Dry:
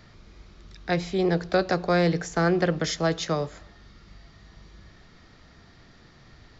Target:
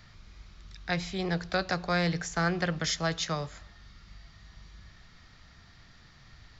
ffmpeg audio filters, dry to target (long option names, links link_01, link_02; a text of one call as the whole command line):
ffmpeg -i in.wav -af "equalizer=frequency=380:width=0.7:gain=-11.5" out.wav